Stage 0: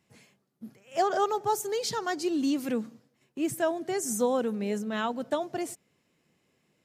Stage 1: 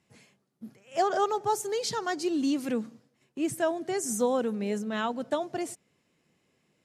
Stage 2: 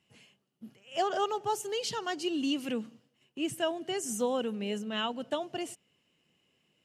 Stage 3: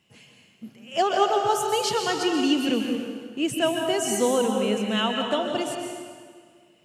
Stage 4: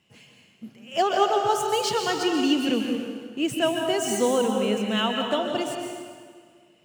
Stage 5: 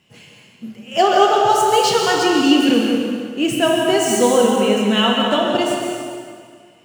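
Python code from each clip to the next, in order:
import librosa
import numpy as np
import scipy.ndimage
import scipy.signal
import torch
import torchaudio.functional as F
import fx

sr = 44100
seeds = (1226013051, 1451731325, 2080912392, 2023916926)

y1 = scipy.signal.sosfilt(scipy.signal.butter(4, 12000.0, 'lowpass', fs=sr, output='sos'), x)
y2 = fx.peak_eq(y1, sr, hz=2900.0, db=15.0, octaves=0.25)
y2 = F.gain(torch.from_numpy(y2), -4.0).numpy()
y3 = fx.rev_plate(y2, sr, seeds[0], rt60_s=1.8, hf_ratio=0.8, predelay_ms=115, drr_db=2.0)
y3 = F.gain(torch.from_numpy(y3), 7.0).numpy()
y4 = scipy.signal.medfilt(y3, 3)
y5 = fx.rev_plate(y4, sr, seeds[1], rt60_s=1.6, hf_ratio=0.8, predelay_ms=0, drr_db=2.0)
y5 = F.gain(torch.from_numpy(y5), 6.5).numpy()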